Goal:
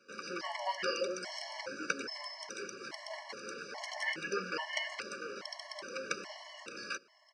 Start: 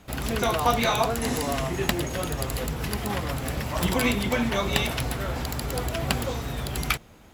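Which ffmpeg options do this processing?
-filter_complex "[0:a]highshelf=f=3.3k:g=3.5,bandreject=f=4.4k:w=9.2,asetrate=35002,aresample=44100,atempo=1.25992,highpass=f=280:w=0.5412,highpass=f=280:w=1.3066,equalizer=f=290:t=q:w=4:g=-7,equalizer=f=800:t=q:w=4:g=-9,equalizer=f=1.5k:t=q:w=4:g=5,equalizer=f=3.6k:t=q:w=4:g=-7,equalizer=f=5.1k:t=q:w=4:g=9,lowpass=f=5.9k:w=0.5412,lowpass=f=5.9k:w=1.3066,asplit=2[a][b];[b]aecho=0:1:605:0.0708[c];[a][c]amix=inputs=2:normalize=0,afftfilt=real='re*gt(sin(2*PI*1.2*pts/sr)*(1-2*mod(floor(b*sr/1024/570),2)),0)':imag='im*gt(sin(2*PI*1.2*pts/sr)*(1-2*mod(floor(b*sr/1024/570),2)),0)':win_size=1024:overlap=0.75,volume=-7.5dB"

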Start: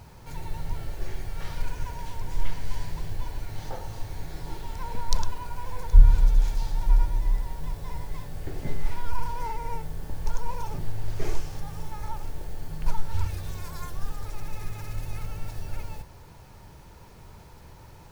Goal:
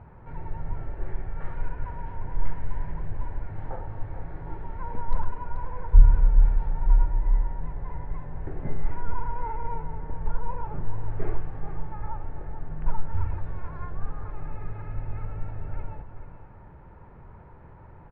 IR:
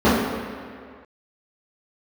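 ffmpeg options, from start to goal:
-filter_complex "[0:a]lowpass=f=1.8k:w=0.5412,lowpass=f=1.8k:w=1.3066,asplit=2[a][b];[b]aecho=0:1:433:0.316[c];[a][c]amix=inputs=2:normalize=0"

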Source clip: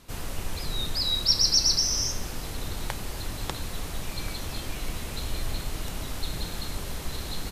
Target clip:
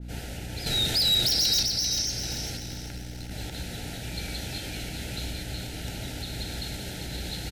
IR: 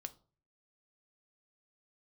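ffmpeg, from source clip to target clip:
-filter_complex "[0:a]acompressor=threshold=-28dB:ratio=2.5,highpass=58,asettb=1/sr,asplit=3[a][b][c];[a]atrim=end=0.664[d];[b]atrim=start=0.66:end=1.63,asetpts=PTS-STARTPTS,afade=t=in:d=0.004:c=qsin,afade=t=out:st=0.966:d=0.004:c=qsin,aeval=exprs='0.119*sin(PI/2*2.82*val(0)/0.119)':c=same[e];[c]atrim=start=1.626[f];[d][e]acrossfade=d=0.004:c1=hsin:c2=qsin[g];[g][f]acrossfade=d=0.004:c1=qsin:c2=hsin,asettb=1/sr,asplit=3[h][i][j];[h]atrim=end=2.574[k];[i]atrim=start=2.57:end=3.31,asetpts=PTS-STARTPTS,afade=t=in:d=0.004:c=qsin,afade=t=out:st=0.736:d=0.004:c=qsin,aeval=exprs='0.178*(cos(1*acos(clip(val(0)/0.178,-1,1)))-cos(1*PI/2))+0.0501*(cos(3*acos(clip(val(0)/0.178,-1,1)))-cos(3*PI/2))+0.0562*(cos(4*acos(clip(val(0)/0.178,-1,1)))-cos(4*PI/2))+0.00708*(cos(5*acos(clip(val(0)/0.178,-1,1)))-cos(5*PI/2))':c=same[l];[j]atrim=start=3.306[m];[k][l]acrossfade=d=0.004:c1=hsin:c2=qsin[n];[n][m]acrossfade=d=0.004:c1=qsin:c2=hsin,aeval=exprs='val(0)+0.0141*(sin(2*PI*60*n/s)+sin(2*PI*2*60*n/s)/2+sin(2*PI*3*60*n/s)/3+sin(2*PI*4*60*n/s)/4+sin(2*PI*5*60*n/s)/5)':c=same,alimiter=limit=-22dB:level=0:latency=1:release=35,asuperstop=centerf=1100:order=8:qfactor=2.5,highshelf=f=6.7k:g=-8,asplit=2[o][p];[p]aecho=0:1:393|786|1179|1572|1965:0.398|0.171|0.0736|0.0317|0.0136[q];[o][q]amix=inputs=2:normalize=0,adynamicequalizer=threshold=0.00501:dfrequency=1900:dqfactor=0.7:tfrequency=1900:tqfactor=0.7:attack=5:release=100:ratio=0.375:range=3:mode=boostabove:tftype=highshelf"

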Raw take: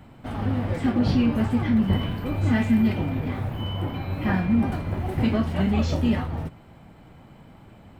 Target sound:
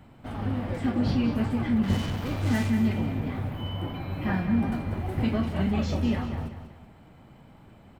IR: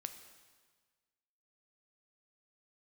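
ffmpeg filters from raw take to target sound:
-filter_complex "[0:a]asettb=1/sr,asplit=3[a][b][c];[a]atrim=end=1.834[d];[b]atrim=start=1.83:end=2.7,asetpts=PTS-STARTPTS,afade=t=in:d=0.004:c=qsin,afade=t=out:st=0.866:d=0.004:c=qsin,acrusher=bits=4:mix=0:aa=0.5[e];[c]atrim=start=2.696[f];[d][e]acrossfade=d=0.004:c1=hsin:c2=qsin[g];[g][f]acrossfade=d=0.004:c1=qsin:c2=hsin,aecho=1:1:191|382|573|764:0.316|0.123|0.0481|0.0188,volume=-4dB"

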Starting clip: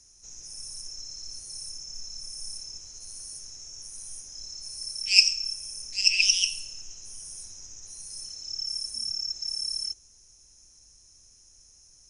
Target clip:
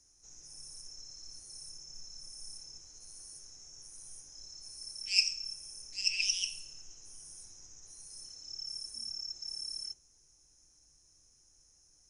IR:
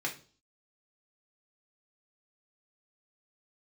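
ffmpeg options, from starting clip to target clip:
-filter_complex "[0:a]asplit=2[a][b];[1:a]atrim=start_sample=2205,lowpass=2.1k[c];[b][c]afir=irnorm=-1:irlink=0,volume=-6.5dB[d];[a][d]amix=inputs=2:normalize=0,volume=-9dB"

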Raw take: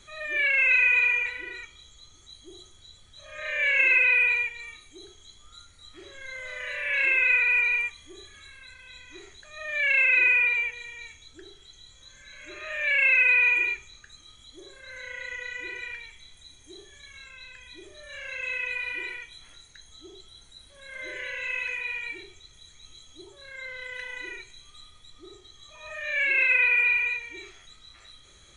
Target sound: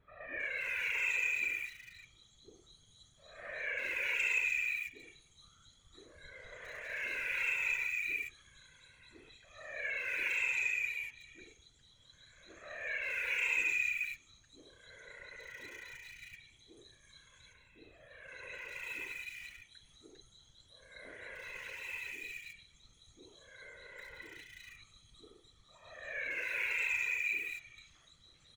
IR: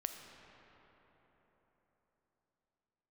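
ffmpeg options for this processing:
-filter_complex "[0:a]asettb=1/sr,asplit=3[a][b][c];[a]atrim=end=17.134[d];[b]atrim=start=17.13:end=17.88,asetpts=PTS-STARTPTS,afade=t=in:d=0.004:c=qsin,afade=t=out:st=0.746:d=0.004:c=qsin,equalizer=f=5.9k:w=0.74:g=-11.5[e];[c]atrim=start=17.876[f];[d][e]acrossfade=d=0.004:c1=hsin:c2=qsin[g];[g][f]acrossfade=d=0.004:c1=qsin:c2=hsin,asplit=2[h][i];[i]aeval=exprs='val(0)*gte(abs(val(0)),0.0266)':c=same,volume=-8dB[j];[h][j]amix=inputs=2:normalize=0,asettb=1/sr,asplit=3[k][l][m];[k]atrim=end=9.974[n];[l]atrim=start=9.97:end=10.76,asetpts=PTS-STARTPTS,afade=t=in:d=0.004:c=qsin,afade=t=out:st=0.786:d=0.004:c=qsin,adynamicsmooth=sensitivity=6.5:basefreq=7.2k[o];[m]atrim=start=10.756[p];[n][o]acrossfade=d=0.004:c1=hsin:c2=qsin[q];[q][p]acrossfade=d=0.004:c1=qsin:c2=hsin,asoftclip=type=tanh:threshold=-12dB,acrossover=split=2100[r][s];[s]adelay=400[t];[r][t]amix=inputs=2:normalize=0,afftfilt=real='hypot(re,im)*cos(2*PI*random(0))':imag='hypot(re,im)*sin(2*PI*random(1))':win_size=512:overlap=0.75,volume=-5dB"

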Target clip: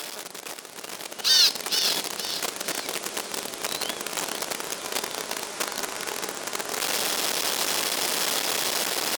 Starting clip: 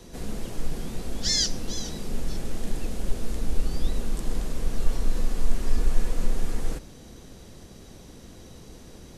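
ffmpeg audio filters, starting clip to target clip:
-af "aeval=exprs='val(0)+0.5*0.0668*sgn(val(0))':c=same,highpass=720,asetrate=38170,aresample=44100,atempo=1.15535,aecho=1:1:464|928|1392|1856:0.224|0.094|0.0395|0.0166,dynaudnorm=f=380:g=7:m=10dB,volume=-2dB"

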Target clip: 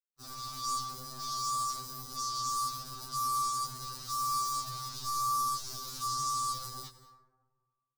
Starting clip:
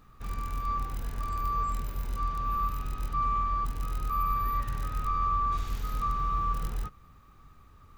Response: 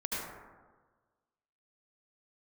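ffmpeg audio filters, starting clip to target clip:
-filter_complex "[0:a]acrusher=bits=5:mix=0:aa=0.5,areverse,acompressor=mode=upward:threshold=-39dB:ratio=2.5,areverse,highshelf=f=3.5k:t=q:w=3:g=12.5,asplit=2[a][b];[1:a]atrim=start_sample=2205,asetrate=43218,aresample=44100,adelay=96[c];[b][c]afir=irnorm=-1:irlink=0,volume=-16.5dB[d];[a][d]amix=inputs=2:normalize=0,afftfilt=real='re*2.45*eq(mod(b,6),0)':imag='im*2.45*eq(mod(b,6),0)':win_size=2048:overlap=0.75,volume=-7.5dB"

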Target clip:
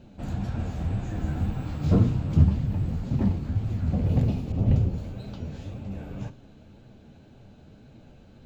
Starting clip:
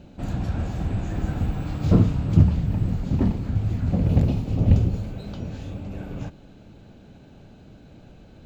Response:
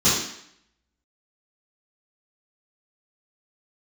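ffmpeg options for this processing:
-filter_complex "[0:a]flanger=delay=7.3:depth=6.5:regen=47:speed=1.9:shape=triangular,asplit=2[a][b];[1:a]atrim=start_sample=2205[c];[b][c]afir=irnorm=-1:irlink=0,volume=-32.5dB[d];[a][d]amix=inputs=2:normalize=0,asettb=1/sr,asplit=3[e][f][g];[e]atrim=end=4.524[h];[f]atrim=start=4.52:end=4.98,asetpts=PTS-STARTPTS,afade=t=in:d=0.004:c=qsin,afade=t=out:st=0.456:d=0.004:c=qsin,adynamicequalizer=threshold=0.00355:dfrequency=2300:dqfactor=0.7:tfrequency=2300:tqfactor=0.7:attack=5:release=100:ratio=0.375:range=2:mode=cutabove:tftype=highshelf[i];[g]atrim=start=4.976[j];[h][i]acrossfade=d=0.004:c1=hsin:c2=qsin[k];[k][j]acrossfade=d=0.004:c1=qsin:c2=hsin"

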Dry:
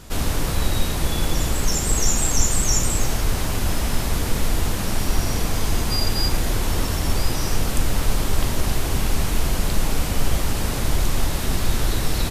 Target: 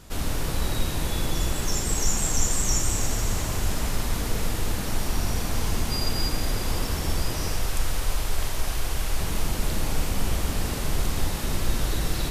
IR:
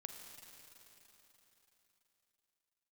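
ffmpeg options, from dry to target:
-filter_complex "[0:a]asettb=1/sr,asplit=3[a][b][c];[a]atrim=end=7.524[d];[b]atrim=start=7.52:end=9.21,asetpts=PTS-STARTPTS,afade=t=in:d=0.004:c=qsin,afade=t=out:st=1.686:d=0.004:c=qsin,equalizer=f=200:w=0.77:g=-10[e];[c]atrim=start=9.206[f];[d][e]acrossfade=d=0.004:c1=hsin:c2=qsin[g];[g][f]acrossfade=d=0.004:c1=qsin:c2=hsin[h];[1:a]atrim=start_sample=2205[i];[h][i]afir=irnorm=-1:irlink=0"

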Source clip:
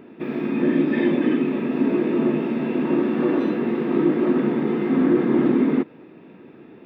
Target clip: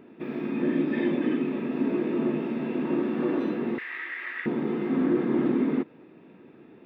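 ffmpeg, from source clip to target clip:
-filter_complex "[0:a]asettb=1/sr,asplit=3[a][b][c];[a]atrim=end=3.784[d];[b]atrim=start=3.78:end=4.46,asetpts=PTS-STARTPTS,afade=t=in:d=0.004:c=qsin,afade=t=out:st=0.676:d=0.004:c=qsin,highpass=f=1.9k:t=q:w=7.7[e];[c]atrim=start=4.456[f];[d][e]acrossfade=d=0.004:c1=hsin:c2=qsin[g];[g][f]acrossfade=d=0.004:c1=qsin:c2=hsin,volume=-6dB"

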